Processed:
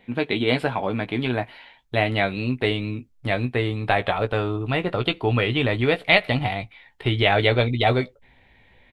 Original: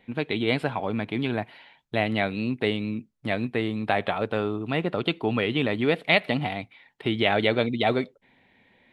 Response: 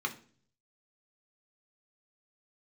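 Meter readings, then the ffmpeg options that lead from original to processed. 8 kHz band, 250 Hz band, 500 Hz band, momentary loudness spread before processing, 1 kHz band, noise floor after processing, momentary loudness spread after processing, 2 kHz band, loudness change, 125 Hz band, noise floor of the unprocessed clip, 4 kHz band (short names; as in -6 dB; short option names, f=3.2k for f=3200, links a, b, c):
n/a, +0.5 dB, +3.0 dB, 10 LU, +4.0 dB, -58 dBFS, 10 LU, +4.0 dB, +3.5 dB, +7.0 dB, -66 dBFS, +4.0 dB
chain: -filter_complex "[0:a]asubboost=boost=11:cutoff=63,asplit=2[a][b];[b]adelay=16,volume=-8dB[c];[a][c]amix=inputs=2:normalize=0,volume=3.5dB"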